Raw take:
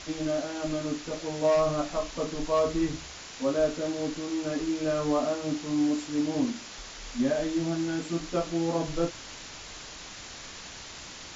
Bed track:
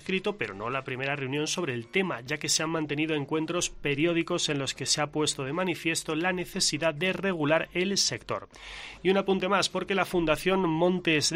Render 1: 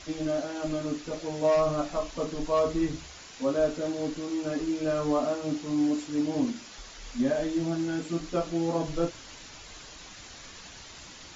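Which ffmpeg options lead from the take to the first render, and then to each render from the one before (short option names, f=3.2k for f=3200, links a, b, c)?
-af "afftdn=nr=6:nf=-44"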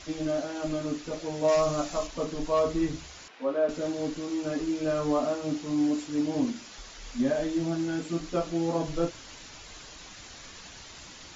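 -filter_complex "[0:a]asettb=1/sr,asplit=3[a][b][c];[a]atrim=end=1.484[d];[b]atrim=start=1.48:end=2.07,asetpts=PTS-STARTPTS,afade=t=in:d=0.004:c=qsin,afade=t=out:st=0.586:d=0.004:c=qsin,aemphasis=mode=production:type=50fm[e];[c]atrim=start=2.066[f];[d][e]acrossfade=d=0.004:c1=hsin:c2=qsin[g];[g][f]acrossfade=d=0.004:c1=qsin:c2=hsin,asettb=1/sr,asplit=3[h][i][j];[h]atrim=end=3.284[k];[i]atrim=start=3.28:end=3.69,asetpts=PTS-STARTPTS,afade=t=in:d=0.004:c=qsin,afade=t=out:st=0.406:d=0.004:c=qsin,highpass=340,lowpass=2.5k[l];[j]atrim=start=3.686[m];[k][l]acrossfade=d=0.004:c1=hsin:c2=qsin[n];[n][m]acrossfade=d=0.004:c1=qsin:c2=hsin"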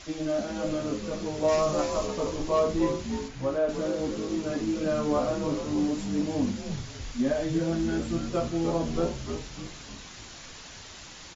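-filter_complex "[0:a]asplit=2[a][b];[b]adelay=49,volume=-13.5dB[c];[a][c]amix=inputs=2:normalize=0,asplit=7[d][e][f][g][h][i][j];[e]adelay=301,afreqshift=-99,volume=-7dB[k];[f]adelay=602,afreqshift=-198,volume=-13.2dB[l];[g]adelay=903,afreqshift=-297,volume=-19.4dB[m];[h]adelay=1204,afreqshift=-396,volume=-25.6dB[n];[i]adelay=1505,afreqshift=-495,volume=-31.8dB[o];[j]adelay=1806,afreqshift=-594,volume=-38dB[p];[d][k][l][m][n][o][p]amix=inputs=7:normalize=0"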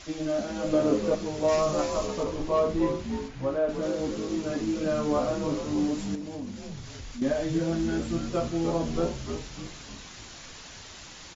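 -filter_complex "[0:a]asettb=1/sr,asplit=3[a][b][c];[a]atrim=end=0.734[d];[b]atrim=start=0.73:end=1.15,asetpts=PTS-STARTPTS,afade=t=in:d=0.004:c=qsin,afade=t=out:st=0.416:d=0.004:c=qsin,equalizer=f=510:w=0.56:g=9.5[e];[c]atrim=start=1.146[f];[d][e]acrossfade=d=0.004:c1=hsin:c2=qsin[g];[g][f]acrossfade=d=0.004:c1=qsin:c2=hsin,asettb=1/sr,asplit=3[h][i][j];[h]atrim=end=2.234[k];[i]atrim=start=2.23:end=3.83,asetpts=PTS-STARTPTS,afade=t=in:d=0.004:c=qsin,afade=t=out:st=1.596:d=0.004:c=qsin,lowpass=f=3.6k:p=1[l];[j]atrim=start=3.826[m];[k][l]acrossfade=d=0.004:c1=hsin:c2=qsin[n];[n][m]acrossfade=d=0.004:c1=qsin:c2=hsin,asettb=1/sr,asplit=3[o][p][q];[o]atrim=end=6.154[r];[p]atrim=start=6.15:end=7.22,asetpts=PTS-STARTPTS,afade=t=in:d=0.004:c=qsin,afade=t=out:st=1.066:d=0.004:c=qsin,acompressor=threshold=-37dB:ratio=2.5:attack=3.2:release=140:knee=1:detection=peak[s];[q]atrim=start=7.216[t];[r][s]acrossfade=d=0.004:c1=hsin:c2=qsin[u];[u][t]acrossfade=d=0.004:c1=qsin:c2=hsin"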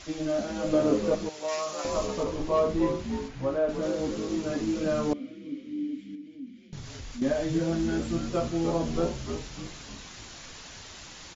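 -filter_complex "[0:a]asettb=1/sr,asplit=3[a][b][c];[a]atrim=end=1.294[d];[b]atrim=start=1.29:end=1.85,asetpts=PTS-STARTPTS,afade=t=in:d=0.004:c=qsin,afade=t=out:st=0.556:d=0.004:c=qsin,highpass=f=1.4k:p=1[e];[c]atrim=start=1.846[f];[d][e]acrossfade=d=0.004:c1=hsin:c2=qsin[g];[g][f]acrossfade=d=0.004:c1=qsin:c2=hsin,asettb=1/sr,asplit=3[h][i][j];[h]atrim=end=5.134[k];[i]atrim=start=5.13:end=6.73,asetpts=PTS-STARTPTS,afade=t=in:d=0.004:c=qsin,afade=t=out:st=1.596:d=0.004:c=qsin,asplit=3[l][m][n];[l]bandpass=f=270:t=q:w=8,volume=0dB[o];[m]bandpass=f=2.29k:t=q:w=8,volume=-6dB[p];[n]bandpass=f=3.01k:t=q:w=8,volume=-9dB[q];[o][p][q]amix=inputs=3:normalize=0[r];[j]atrim=start=6.726[s];[k][r]acrossfade=d=0.004:c1=hsin:c2=qsin[t];[t][s]acrossfade=d=0.004:c1=qsin:c2=hsin"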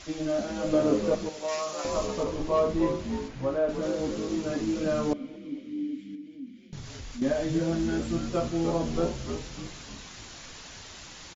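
-filter_complex "[0:a]asplit=2[a][b];[b]adelay=228,lowpass=f=2k:p=1,volume=-23dB,asplit=2[c][d];[d]adelay=228,lowpass=f=2k:p=1,volume=0.44,asplit=2[e][f];[f]adelay=228,lowpass=f=2k:p=1,volume=0.44[g];[a][c][e][g]amix=inputs=4:normalize=0"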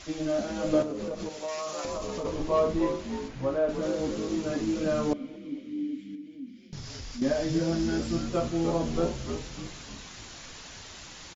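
-filter_complex "[0:a]asettb=1/sr,asplit=3[a][b][c];[a]atrim=end=0.824[d];[b]atrim=start=0.82:end=2.25,asetpts=PTS-STARTPTS,afade=t=in:d=0.004:c=qsin,afade=t=out:st=1.426:d=0.004:c=qsin,acompressor=threshold=-29dB:ratio=12:attack=3.2:release=140:knee=1:detection=peak[e];[c]atrim=start=2.246[f];[d][e]acrossfade=d=0.004:c1=hsin:c2=qsin[g];[g][f]acrossfade=d=0.004:c1=qsin:c2=hsin,asettb=1/sr,asplit=3[h][i][j];[h]atrim=end=2.794[k];[i]atrim=start=2.79:end=3.23,asetpts=PTS-STARTPTS,afade=t=in:d=0.004:c=qsin,afade=t=out:st=0.436:d=0.004:c=qsin,equalizer=f=100:t=o:w=1.6:g=-9.5[l];[j]atrim=start=3.226[m];[k][l]acrossfade=d=0.004:c1=hsin:c2=qsin[n];[n][m]acrossfade=d=0.004:c1=qsin:c2=hsin,asettb=1/sr,asplit=3[o][p][q];[o]atrim=end=6.484[r];[p]atrim=start=6.48:end=8.23,asetpts=PTS-STARTPTS,afade=t=in:d=0.004:c=qsin,afade=t=out:st=1.746:d=0.004:c=qsin,equalizer=f=5.1k:w=4:g=8[s];[q]atrim=start=8.226[t];[r][s]acrossfade=d=0.004:c1=hsin:c2=qsin[u];[u][t]acrossfade=d=0.004:c1=qsin:c2=hsin"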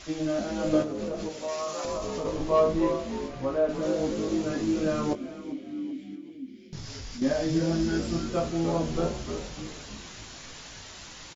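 -filter_complex "[0:a]asplit=2[a][b];[b]adelay=19,volume=-8dB[c];[a][c]amix=inputs=2:normalize=0,asplit=4[d][e][f][g];[e]adelay=390,afreqshift=39,volume=-17dB[h];[f]adelay=780,afreqshift=78,volume=-26.9dB[i];[g]adelay=1170,afreqshift=117,volume=-36.8dB[j];[d][h][i][j]amix=inputs=4:normalize=0"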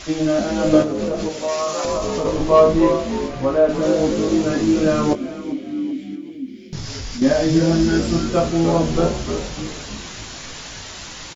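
-af "volume=10dB"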